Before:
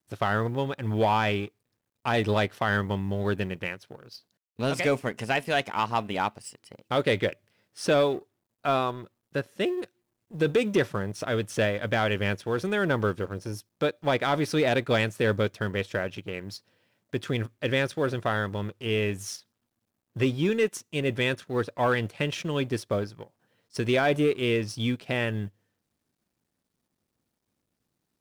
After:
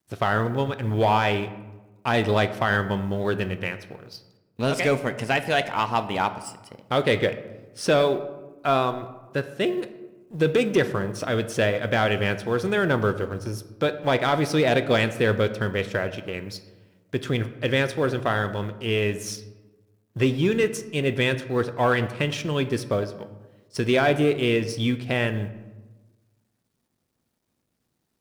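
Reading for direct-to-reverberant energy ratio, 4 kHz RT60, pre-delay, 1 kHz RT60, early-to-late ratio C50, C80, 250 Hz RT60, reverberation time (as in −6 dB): 10.0 dB, 0.60 s, 3 ms, 1.1 s, 13.0 dB, 15.0 dB, 1.5 s, 1.2 s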